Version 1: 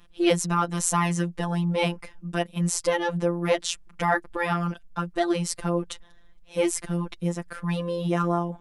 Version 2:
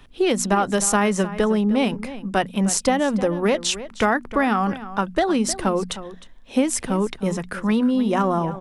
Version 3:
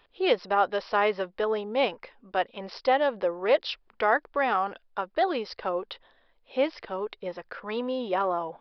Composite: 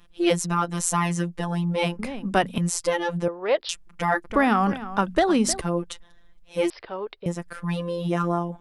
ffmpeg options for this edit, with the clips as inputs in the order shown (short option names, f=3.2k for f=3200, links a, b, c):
-filter_complex "[1:a]asplit=2[a][b];[2:a]asplit=2[c][d];[0:a]asplit=5[e][f][g][h][i];[e]atrim=end=1.992[j];[a]atrim=start=1.988:end=2.582[k];[f]atrim=start=2.578:end=3.282[l];[c]atrim=start=3.278:end=3.692[m];[g]atrim=start=3.688:end=4.302[n];[b]atrim=start=4.298:end=5.612[o];[h]atrim=start=5.608:end=6.702[p];[d]atrim=start=6.698:end=7.262[q];[i]atrim=start=7.258[r];[j][k]acrossfade=d=0.004:c1=hsin:c2=hsin[s];[s][l]acrossfade=d=0.004:c1=hsin:c2=hsin[t];[t][m]acrossfade=d=0.004:c1=hsin:c2=hsin[u];[u][n]acrossfade=d=0.004:c1=hsin:c2=hsin[v];[v][o]acrossfade=d=0.004:c1=hsin:c2=hsin[w];[w][p]acrossfade=d=0.004:c1=hsin:c2=hsin[x];[x][q]acrossfade=d=0.004:c1=hsin:c2=hsin[y];[y][r]acrossfade=d=0.004:c1=hsin:c2=hsin"